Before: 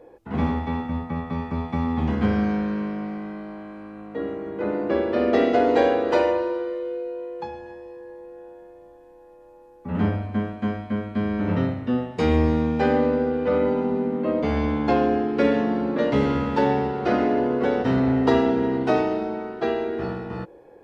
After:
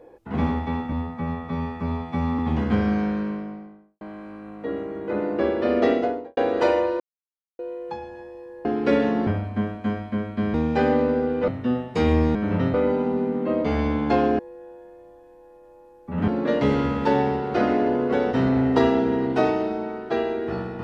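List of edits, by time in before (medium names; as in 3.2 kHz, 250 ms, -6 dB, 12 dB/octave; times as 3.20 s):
0.92–1.90 s: stretch 1.5×
2.61–3.52 s: studio fade out
5.33–5.88 s: studio fade out
6.51–7.10 s: mute
8.16–10.05 s: swap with 15.17–15.79 s
11.32–11.71 s: swap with 12.58–13.52 s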